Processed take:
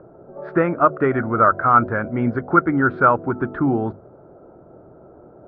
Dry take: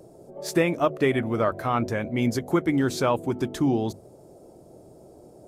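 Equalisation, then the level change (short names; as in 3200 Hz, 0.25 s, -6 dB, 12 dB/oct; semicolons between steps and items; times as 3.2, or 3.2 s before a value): synth low-pass 1400 Hz, resonance Q 8.6; air absorption 380 m; +3.5 dB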